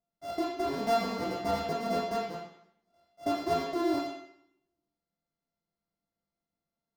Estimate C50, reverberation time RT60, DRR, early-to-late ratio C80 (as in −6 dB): 3.0 dB, 0.70 s, −4.0 dB, 6.0 dB